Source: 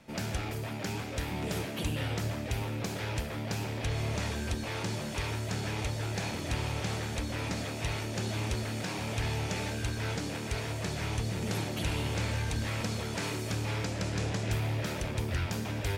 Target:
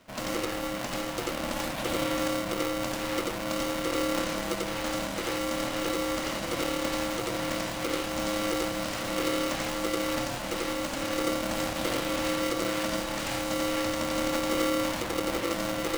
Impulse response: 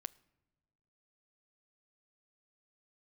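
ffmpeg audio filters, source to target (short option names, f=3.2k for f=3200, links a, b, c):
-filter_complex "[0:a]asplit=2[a][b];[1:a]atrim=start_sample=2205,adelay=90[c];[b][c]afir=irnorm=-1:irlink=0,volume=4.5dB[d];[a][d]amix=inputs=2:normalize=0,aeval=exprs='val(0)*sgn(sin(2*PI*420*n/s))':c=same,volume=-1dB"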